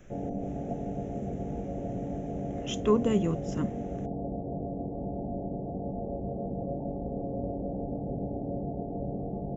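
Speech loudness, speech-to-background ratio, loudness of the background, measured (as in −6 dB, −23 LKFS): −29.5 LKFS, 6.0 dB, −35.5 LKFS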